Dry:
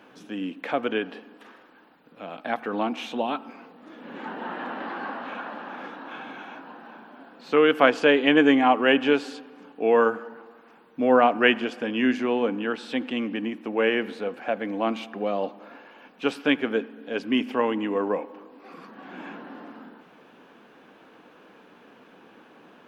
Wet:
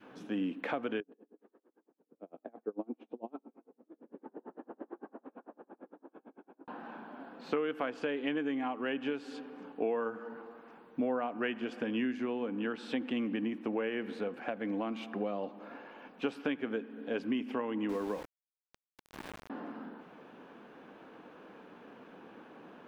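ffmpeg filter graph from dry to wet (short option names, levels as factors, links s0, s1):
-filter_complex "[0:a]asettb=1/sr,asplit=3[s0][s1][s2];[s0]atrim=end=1.004[s3];[s1]atrim=start=1:end=6.68,asetpts=PTS-STARTPTS,afade=t=in:d=0.004:c=qsin,afade=t=out:st=5.676:d=0.004:c=qsin,bandpass=f=380:t=q:w=2.2,aeval=exprs='val(0)*pow(10,-35*(0.5-0.5*cos(2*PI*8.9*n/s))/20)':c=same[s4];[s2]atrim=start=6.676[s5];[s3][s4]acrossfade=d=0.004:c1=hsin:c2=qsin[s6];[s6][s5]acrossfade=d=0.004:c1=qsin:c2=hsin,asettb=1/sr,asplit=3[s7][s8][s9];[s7]atrim=end=17.894[s10];[s8]atrim=start=17.89:end=19.5,asetpts=PTS-STARTPTS,afade=t=in:d=0.004:c=qsin,afade=t=out:st=1.606:d=0.004:c=qsin,bandreject=f=330.8:t=h:w=4,bandreject=f=661.6:t=h:w=4,bandreject=f=992.4:t=h:w=4,bandreject=f=1323.2:t=h:w=4,bandreject=f=1654:t=h:w=4,bandreject=f=1984.8:t=h:w=4,bandreject=f=2315.6:t=h:w=4,bandreject=f=2646.4:t=h:w=4,bandreject=f=2977.2:t=h:w=4,bandreject=f=3308:t=h:w=4,bandreject=f=3638.8:t=h:w=4,bandreject=f=3969.6:t=h:w=4,bandreject=f=4300.4:t=h:w=4,bandreject=f=4631.2:t=h:w=4,bandreject=f=4962:t=h:w=4,bandreject=f=5292.8:t=h:w=4,bandreject=f=5623.6:t=h:w=4,bandreject=f=5954.4:t=h:w=4,bandreject=f=6285.2:t=h:w=4,bandreject=f=6616:t=h:w=4,bandreject=f=6946.8:t=h:w=4,bandreject=f=7277.6:t=h:w=4,bandreject=f=7608.4:t=h:w=4,bandreject=f=7939.2:t=h:w=4,bandreject=f=8270:t=h:w=4,bandreject=f=8600.8:t=h:w=4,bandreject=f=8931.6:t=h:w=4,bandreject=f=9262.4:t=h:w=4,bandreject=f=9593.2:t=h:w=4,aeval=exprs='val(0)*gte(abs(val(0)),0.0211)':c=same[s11];[s9]atrim=start=19.496[s12];[s10][s11]acrossfade=d=0.004:c1=hsin:c2=qsin[s13];[s13][s12]acrossfade=d=0.004:c1=qsin:c2=hsin,highshelf=f=2100:g=-8.5,acompressor=threshold=0.0355:ratio=10,adynamicequalizer=threshold=0.00501:dfrequency=670:dqfactor=0.91:tfrequency=670:tqfactor=0.91:attack=5:release=100:ratio=0.375:range=2.5:mode=cutabove:tftype=bell"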